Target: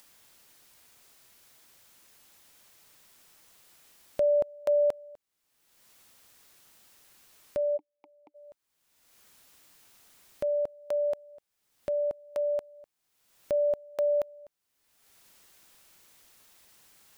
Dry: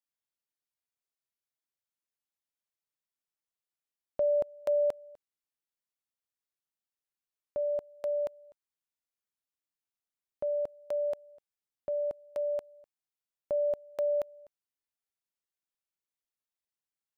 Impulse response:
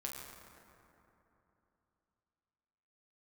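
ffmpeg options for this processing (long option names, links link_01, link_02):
-filter_complex "[0:a]acompressor=mode=upward:threshold=-39dB:ratio=2.5,asplit=3[link_01][link_02][link_03];[link_01]afade=type=out:start_time=7.76:duration=0.02[link_04];[link_02]asplit=3[link_05][link_06][link_07];[link_05]bandpass=frequency=300:width_type=q:width=8,volume=0dB[link_08];[link_06]bandpass=frequency=870:width_type=q:width=8,volume=-6dB[link_09];[link_07]bandpass=frequency=2240:width_type=q:width=8,volume=-9dB[link_10];[link_08][link_09][link_10]amix=inputs=3:normalize=0,afade=type=in:start_time=7.76:duration=0.02,afade=type=out:start_time=8.34:duration=0.02[link_11];[link_03]afade=type=in:start_time=8.34:duration=0.02[link_12];[link_04][link_11][link_12]amix=inputs=3:normalize=0,volume=3dB"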